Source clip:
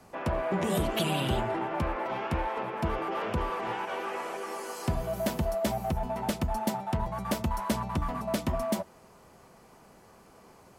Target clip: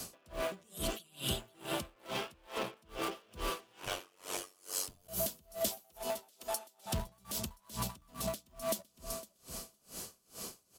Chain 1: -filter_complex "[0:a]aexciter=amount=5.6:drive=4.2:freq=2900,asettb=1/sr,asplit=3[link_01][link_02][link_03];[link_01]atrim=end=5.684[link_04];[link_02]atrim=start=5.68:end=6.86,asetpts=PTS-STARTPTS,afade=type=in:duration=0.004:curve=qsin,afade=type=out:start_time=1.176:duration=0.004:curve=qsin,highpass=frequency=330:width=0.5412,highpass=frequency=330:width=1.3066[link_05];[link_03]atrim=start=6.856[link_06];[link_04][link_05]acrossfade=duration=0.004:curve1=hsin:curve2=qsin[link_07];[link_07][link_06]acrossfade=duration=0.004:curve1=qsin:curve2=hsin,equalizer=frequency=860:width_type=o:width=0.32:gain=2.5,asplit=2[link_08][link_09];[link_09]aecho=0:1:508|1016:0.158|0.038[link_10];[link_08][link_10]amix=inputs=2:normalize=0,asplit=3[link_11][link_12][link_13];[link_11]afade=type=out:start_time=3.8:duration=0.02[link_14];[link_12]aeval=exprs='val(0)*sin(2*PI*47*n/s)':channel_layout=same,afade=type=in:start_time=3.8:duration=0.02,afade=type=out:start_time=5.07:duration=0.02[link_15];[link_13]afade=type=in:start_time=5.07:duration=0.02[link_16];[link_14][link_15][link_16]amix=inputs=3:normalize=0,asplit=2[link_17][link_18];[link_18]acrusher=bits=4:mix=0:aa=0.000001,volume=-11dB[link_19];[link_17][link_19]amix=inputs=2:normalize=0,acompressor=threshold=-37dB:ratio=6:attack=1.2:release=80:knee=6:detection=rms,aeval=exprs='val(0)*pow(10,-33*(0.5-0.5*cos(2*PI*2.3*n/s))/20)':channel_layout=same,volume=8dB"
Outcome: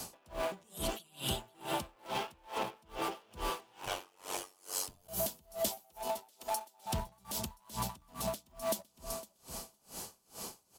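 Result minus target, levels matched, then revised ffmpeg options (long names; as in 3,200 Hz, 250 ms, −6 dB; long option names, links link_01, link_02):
1,000 Hz band +3.5 dB
-filter_complex "[0:a]aexciter=amount=5.6:drive=4.2:freq=2900,asettb=1/sr,asplit=3[link_01][link_02][link_03];[link_01]atrim=end=5.684[link_04];[link_02]atrim=start=5.68:end=6.86,asetpts=PTS-STARTPTS,afade=type=in:duration=0.004:curve=qsin,afade=type=out:start_time=1.176:duration=0.004:curve=qsin,highpass=frequency=330:width=0.5412,highpass=frequency=330:width=1.3066[link_05];[link_03]atrim=start=6.856[link_06];[link_04][link_05]acrossfade=duration=0.004:curve1=hsin:curve2=qsin[link_07];[link_07][link_06]acrossfade=duration=0.004:curve1=qsin:curve2=hsin,equalizer=frequency=860:width_type=o:width=0.32:gain=-8.5,asplit=2[link_08][link_09];[link_09]aecho=0:1:508|1016:0.158|0.038[link_10];[link_08][link_10]amix=inputs=2:normalize=0,asplit=3[link_11][link_12][link_13];[link_11]afade=type=out:start_time=3.8:duration=0.02[link_14];[link_12]aeval=exprs='val(0)*sin(2*PI*47*n/s)':channel_layout=same,afade=type=in:start_time=3.8:duration=0.02,afade=type=out:start_time=5.07:duration=0.02[link_15];[link_13]afade=type=in:start_time=5.07:duration=0.02[link_16];[link_14][link_15][link_16]amix=inputs=3:normalize=0,asplit=2[link_17][link_18];[link_18]acrusher=bits=4:mix=0:aa=0.000001,volume=-11dB[link_19];[link_17][link_19]amix=inputs=2:normalize=0,acompressor=threshold=-37dB:ratio=6:attack=1.2:release=80:knee=6:detection=rms,aeval=exprs='val(0)*pow(10,-33*(0.5-0.5*cos(2*PI*2.3*n/s))/20)':channel_layout=same,volume=8dB"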